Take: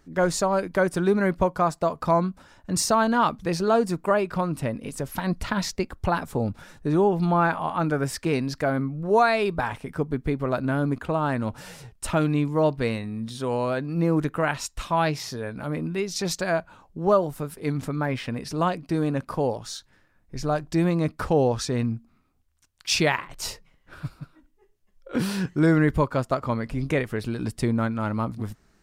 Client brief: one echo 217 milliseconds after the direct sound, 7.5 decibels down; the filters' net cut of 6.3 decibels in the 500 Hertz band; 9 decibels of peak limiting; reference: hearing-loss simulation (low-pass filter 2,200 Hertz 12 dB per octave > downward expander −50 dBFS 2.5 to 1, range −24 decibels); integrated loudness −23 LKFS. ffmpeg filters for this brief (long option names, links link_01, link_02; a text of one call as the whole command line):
ffmpeg -i in.wav -af "equalizer=frequency=500:width_type=o:gain=-8.5,alimiter=limit=-19dB:level=0:latency=1,lowpass=2200,aecho=1:1:217:0.422,agate=range=-24dB:threshold=-50dB:ratio=2.5,volume=7.5dB" out.wav